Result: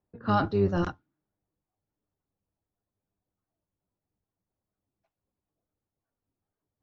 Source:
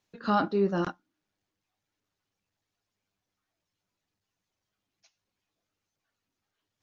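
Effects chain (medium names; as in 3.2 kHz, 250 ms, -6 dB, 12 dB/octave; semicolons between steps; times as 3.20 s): octave divider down 1 oct, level -2 dB; level-controlled noise filter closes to 800 Hz, open at -22.5 dBFS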